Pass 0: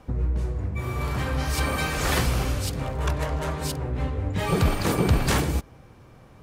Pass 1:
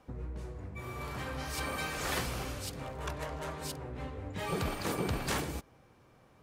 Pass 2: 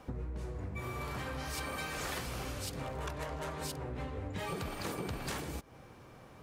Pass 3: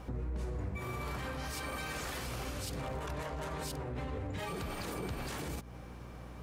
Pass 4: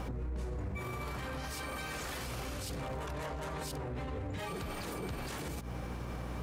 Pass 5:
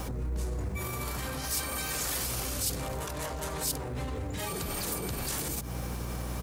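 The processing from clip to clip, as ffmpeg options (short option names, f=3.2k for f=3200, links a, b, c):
-af "lowshelf=f=160:g=-9,volume=-8.5dB"
-af "acompressor=threshold=-44dB:ratio=6,volume=7.5dB"
-af "alimiter=level_in=10dB:limit=-24dB:level=0:latency=1:release=31,volume=-10dB,aeval=exprs='val(0)+0.00282*(sin(2*PI*60*n/s)+sin(2*PI*2*60*n/s)/2+sin(2*PI*3*60*n/s)/3+sin(2*PI*4*60*n/s)/4+sin(2*PI*5*60*n/s)/5)':c=same,volume=3dB"
-af "alimiter=level_in=17dB:limit=-24dB:level=0:latency=1:release=91,volume=-17dB,volume=9.5dB"
-filter_complex "[0:a]acrossover=split=590|3000[a][b][c];[a]aecho=1:1:99:0.376[d];[c]crystalizer=i=3:c=0[e];[d][b][e]amix=inputs=3:normalize=0,volume=3dB"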